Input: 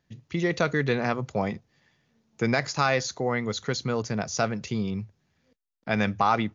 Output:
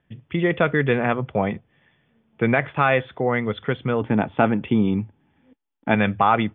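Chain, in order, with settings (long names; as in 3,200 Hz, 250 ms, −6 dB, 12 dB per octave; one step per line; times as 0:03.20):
Chebyshev low-pass filter 3,500 Hz, order 10
0:04.01–0:05.95: hollow resonant body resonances 280/850 Hz, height 12 dB, ringing for 35 ms
level +5.5 dB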